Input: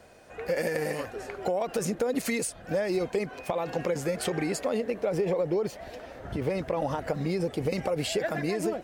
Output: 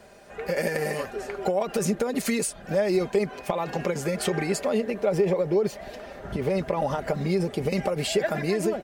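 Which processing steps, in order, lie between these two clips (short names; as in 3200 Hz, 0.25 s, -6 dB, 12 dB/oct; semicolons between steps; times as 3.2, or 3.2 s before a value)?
comb 5 ms, depth 48%; gain +2.5 dB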